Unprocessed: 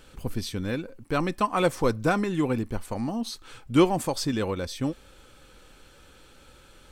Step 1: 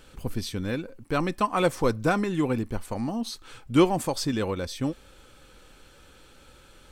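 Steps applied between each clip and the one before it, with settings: no audible change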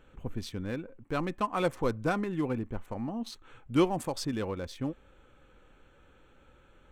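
local Wiener filter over 9 samples; trim -5.5 dB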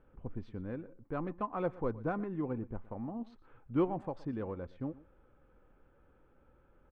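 low-pass 1.3 kHz 12 dB/octave; delay 119 ms -19.5 dB; trim -5 dB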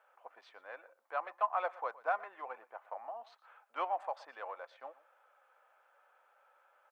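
Chebyshev high-pass 650 Hz, order 4; trim +6.5 dB

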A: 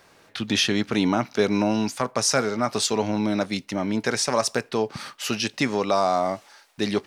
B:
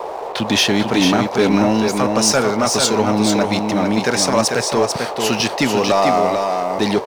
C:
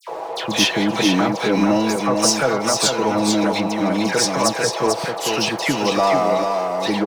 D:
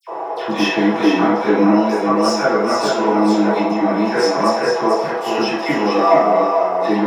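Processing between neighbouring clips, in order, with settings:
band noise 380–1000 Hz -35 dBFS; waveshaping leveller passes 2; on a send: delay 444 ms -5 dB
bass shelf 94 Hz -7.5 dB; comb 6.1 ms, depth 51%; phase dispersion lows, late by 82 ms, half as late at 2.1 kHz; trim -2.5 dB
reverberation RT60 0.60 s, pre-delay 3 ms, DRR -8.5 dB; trim -16 dB

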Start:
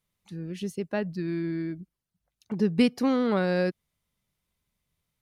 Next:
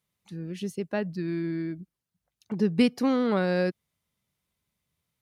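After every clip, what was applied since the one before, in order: high-pass 66 Hz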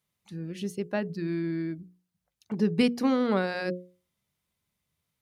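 hum notches 60/120/180/240/300/360/420/480/540 Hz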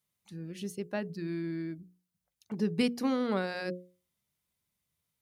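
treble shelf 5.7 kHz +6.5 dB; trim -5 dB

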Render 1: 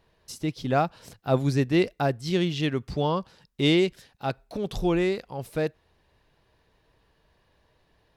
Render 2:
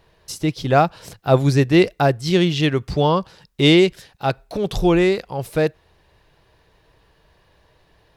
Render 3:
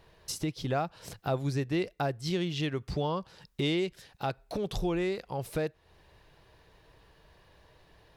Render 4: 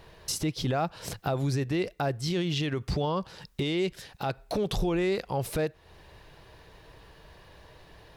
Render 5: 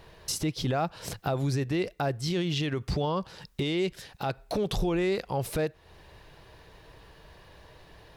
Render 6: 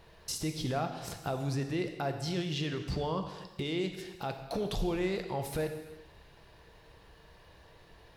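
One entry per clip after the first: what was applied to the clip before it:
peaking EQ 240 Hz -9 dB 0.24 oct; trim +8.5 dB
compression 2.5:1, threshold -31 dBFS, peak gain reduction 15 dB; trim -2.5 dB
peak limiter -27.5 dBFS, peak gain reduction 9.5 dB; trim +7.5 dB
no audible change
gated-style reverb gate 440 ms falling, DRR 5.5 dB; trim -5.5 dB

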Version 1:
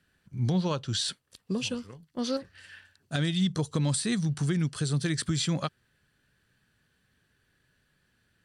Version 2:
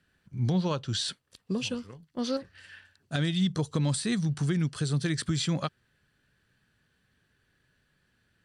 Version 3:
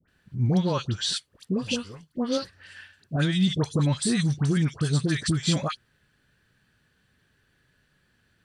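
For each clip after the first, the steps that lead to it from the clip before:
treble shelf 8.5 kHz -6.5 dB
phase dispersion highs, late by 85 ms, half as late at 1.3 kHz; trim +4 dB

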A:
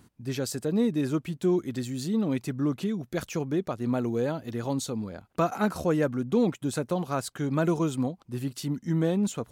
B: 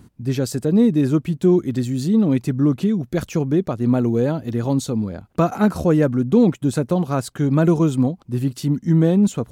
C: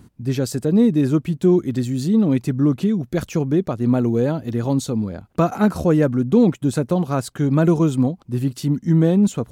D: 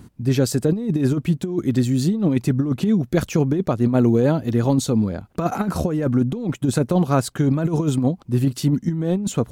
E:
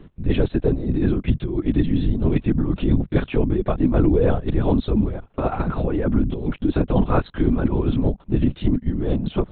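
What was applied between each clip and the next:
bass shelf 420 Hz +9 dB; trim +3.5 dB
no audible change
compressor with a negative ratio -18 dBFS, ratio -0.5; trim +1 dB
LPC vocoder at 8 kHz whisper

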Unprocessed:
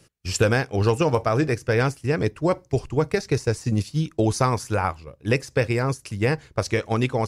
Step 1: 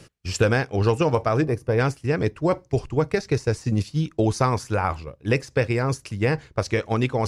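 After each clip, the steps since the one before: time-frequency box 1.42–1.78 s, 1.2–8.6 kHz -9 dB; treble shelf 8.5 kHz -10 dB; reverse; upward compressor, threshold -22 dBFS; reverse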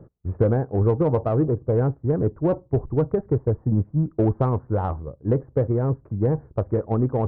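Gaussian low-pass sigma 9.3 samples; in parallel at -6 dB: saturation -24 dBFS, distortion -8 dB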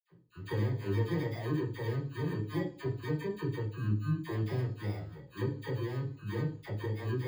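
bit-reversed sample order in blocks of 32 samples; phase dispersion lows, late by 66 ms, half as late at 850 Hz; reverberation RT60 0.45 s, pre-delay 46 ms; trim -3 dB

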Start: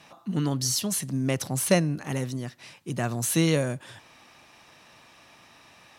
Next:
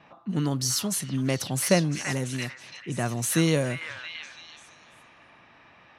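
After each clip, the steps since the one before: repeats whose band climbs or falls 336 ms, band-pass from 1.7 kHz, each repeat 0.7 oct, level -0.5 dB; level-controlled noise filter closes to 2.1 kHz, open at -23.5 dBFS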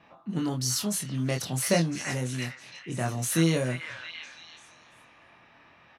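doubling 24 ms -4 dB; trim -3.5 dB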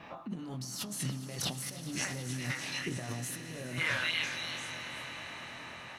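compressor with a negative ratio -39 dBFS, ratio -1; echo with a slow build-up 105 ms, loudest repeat 5, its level -17 dB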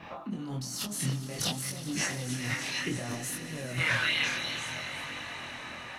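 chorus voices 2, 0.58 Hz, delay 24 ms, depth 4.2 ms; trim +7 dB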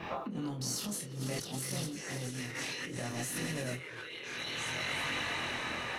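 compressor with a negative ratio -39 dBFS, ratio -1; band noise 310–530 Hz -53 dBFS

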